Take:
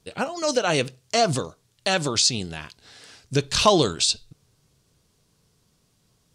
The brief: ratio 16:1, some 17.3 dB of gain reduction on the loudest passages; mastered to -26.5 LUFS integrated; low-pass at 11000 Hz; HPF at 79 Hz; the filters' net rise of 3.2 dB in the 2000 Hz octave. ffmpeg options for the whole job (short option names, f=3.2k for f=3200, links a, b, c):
-af "highpass=79,lowpass=11k,equalizer=f=2k:t=o:g=4.5,acompressor=threshold=-28dB:ratio=16,volume=7dB"